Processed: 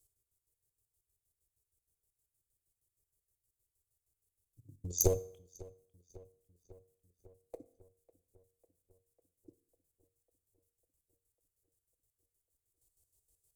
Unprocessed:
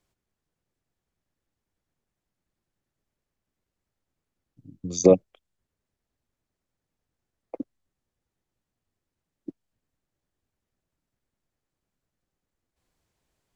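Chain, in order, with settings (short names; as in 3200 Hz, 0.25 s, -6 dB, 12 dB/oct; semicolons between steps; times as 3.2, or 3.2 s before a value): chopper 6.4 Hz, depth 65%, duty 45%; one-sided clip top -26.5 dBFS, bottom -5.5 dBFS; EQ curve 110 Hz 0 dB, 210 Hz -21 dB, 400 Hz -5 dB, 1500 Hz -23 dB, 5600 Hz -1 dB, 8700 Hz +13 dB; darkening echo 0.549 s, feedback 67%, low-pass 3700 Hz, level -21 dB; on a send at -14 dB: reverb RT60 0.60 s, pre-delay 3 ms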